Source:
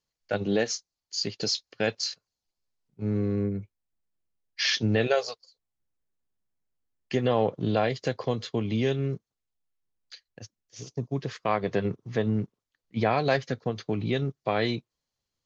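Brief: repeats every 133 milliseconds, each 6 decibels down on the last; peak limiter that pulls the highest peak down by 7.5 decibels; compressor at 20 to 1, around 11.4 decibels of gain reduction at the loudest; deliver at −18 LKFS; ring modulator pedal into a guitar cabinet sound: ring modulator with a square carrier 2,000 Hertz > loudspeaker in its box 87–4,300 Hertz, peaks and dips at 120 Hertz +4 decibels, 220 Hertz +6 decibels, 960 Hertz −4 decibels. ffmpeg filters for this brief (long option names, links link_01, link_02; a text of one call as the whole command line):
ffmpeg -i in.wav -af "acompressor=threshold=-30dB:ratio=20,alimiter=level_in=1.5dB:limit=-24dB:level=0:latency=1,volume=-1.5dB,aecho=1:1:133|266|399|532|665|798:0.501|0.251|0.125|0.0626|0.0313|0.0157,aeval=exprs='val(0)*sgn(sin(2*PI*2000*n/s))':channel_layout=same,highpass=87,equalizer=frequency=120:width_type=q:width=4:gain=4,equalizer=frequency=220:width_type=q:width=4:gain=6,equalizer=frequency=960:width_type=q:width=4:gain=-4,lowpass=frequency=4300:width=0.5412,lowpass=frequency=4300:width=1.3066,volume=17.5dB" out.wav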